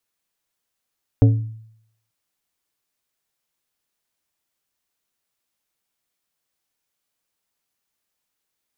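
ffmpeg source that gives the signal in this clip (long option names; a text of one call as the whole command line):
ffmpeg -f lavfi -i "aevalsrc='0.447*pow(10,-3*t/0.71)*sin(2*PI*111*t)+0.211*pow(10,-3*t/0.374)*sin(2*PI*277.5*t)+0.1*pow(10,-3*t/0.269)*sin(2*PI*444*t)+0.0473*pow(10,-3*t/0.23)*sin(2*PI*555*t)+0.0224*pow(10,-3*t/0.192)*sin(2*PI*721.5*t)':duration=0.89:sample_rate=44100" out.wav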